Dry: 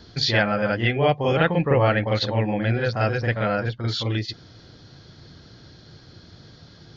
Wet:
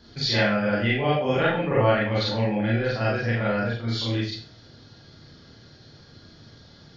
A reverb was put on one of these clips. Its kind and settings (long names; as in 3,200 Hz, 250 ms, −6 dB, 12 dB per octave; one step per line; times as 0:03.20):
four-comb reverb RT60 0.39 s, combs from 27 ms, DRR −5 dB
level −7.5 dB